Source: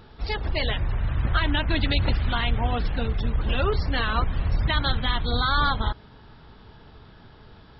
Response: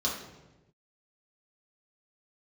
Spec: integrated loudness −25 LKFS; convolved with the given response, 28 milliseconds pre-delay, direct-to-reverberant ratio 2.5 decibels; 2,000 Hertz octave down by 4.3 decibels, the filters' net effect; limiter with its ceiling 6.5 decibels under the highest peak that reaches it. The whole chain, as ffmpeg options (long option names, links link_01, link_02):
-filter_complex "[0:a]equalizer=frequency=2000:width_type=o:gain=-6,alimiter=limit=-17dB:level=0:latency=1,asplit=2[link_01][link_02];[1:a]atrim=start_sample=2205,adelay=28[link_03];[link_02][link_03]afir=irnorm=-1:irlink=0,volume=-10dB[link_04];[link_01][link_04]amix=inputs=2:normalize=0,volume=1dB"